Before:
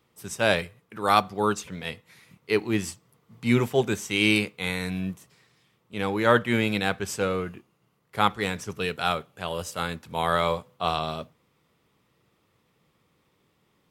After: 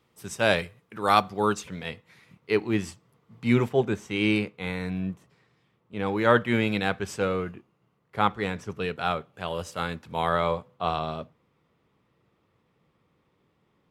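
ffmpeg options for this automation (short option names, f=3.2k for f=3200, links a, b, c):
-af "asetnsamples=n=441:p=0,asendcmd='1.83 lowpass f 3200;3.69 lowpass f 1500;6.06 lowpass f 3600;7.51 lowpass f 2000;9.34 lowpass f 3700;10.29 lowpass f 1900',lowpass=f=8k:p=1"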